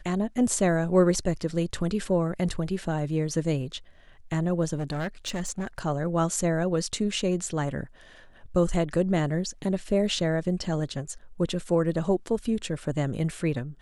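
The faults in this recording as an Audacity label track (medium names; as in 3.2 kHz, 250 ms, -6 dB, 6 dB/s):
4.770000	5.860000	clipped -26 dBFS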